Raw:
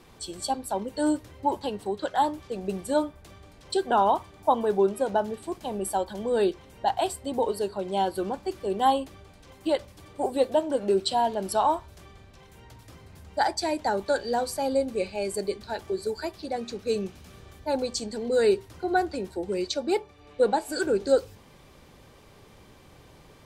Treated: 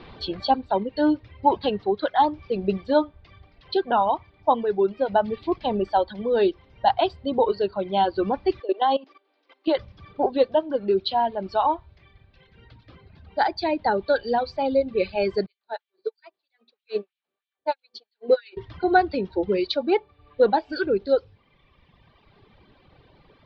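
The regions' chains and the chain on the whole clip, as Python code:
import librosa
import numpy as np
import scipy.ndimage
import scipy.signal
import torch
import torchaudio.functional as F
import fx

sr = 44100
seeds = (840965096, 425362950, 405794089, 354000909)

y = fx.chain(x, sr, fx.steep_highpass(hz=270.0, slope=72),
    fx.level_steps(step_db=13), at=(8.6, 9.77))
y = fx.chain(y, sr, fx.filter_lfo_highpass(shape='sine', hz=3.1, low_hz=320.0, high_hz=3100.0, q=1.6),
    fx.upward_expand(threshold_db=-42.0, expansion=2.5), at=(15.46, 18.57))
y = fx.rider(y, sr, range_db=5, speed_s=0.5)
y = fx.dereverb_blind(y, sr, rt60_s=1.8)
y = scipy.signal.sosfilt(scipy.signal.butter(8, 4400.0, 'lowpass', fs=sr, output='sos'), y)
y = y * 10.0 ** (5.0 / 20.0)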